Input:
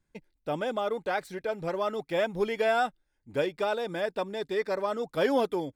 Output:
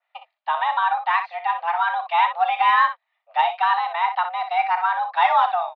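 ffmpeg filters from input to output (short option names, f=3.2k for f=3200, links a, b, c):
-af "highpass=f=360:t=q:w=0.5412,highpass=f=360:t=q:w=1.307,lowpass=f=3.4k:t=q:w=0.5176,lowpass=f=3.4k:t=q:w=0.7071,lowpass=f=3.4k:t=q:w=1.932,afreqshift=340,acontrast=81,aecho=1:1:34|61:0.188|0.335,adynamicequalizer=threshold=0.0158:dfrequency=2900:dqfactor=0.7:tfrequency=2900:tqfactor=0.7:attack=5:release=100:ratio=0.375:range=2:mode=cutabove:tftype=highshelf,volume=2dB"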